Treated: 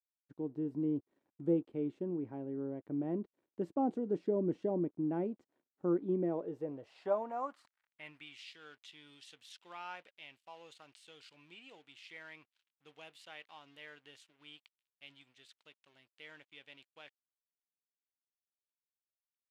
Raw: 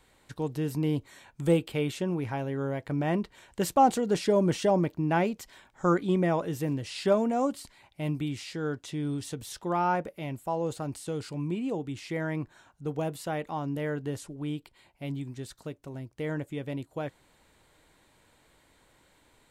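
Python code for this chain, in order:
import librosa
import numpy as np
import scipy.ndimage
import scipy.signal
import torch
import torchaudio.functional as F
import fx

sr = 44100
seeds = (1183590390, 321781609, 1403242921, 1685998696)

y = np.sign(x) * np.maximum(np.abs(x) - 10.0 ** (-52.0 / 20.0), 0.0)
y = fx.filter_sweep_bandpass(y, sr, from_hz=310.0, to_hz=3000.0, start_s=6.17, end_s=8.41, q=2.1)
y = F.gain(torch.from_numpy(y), -3.0).numpy()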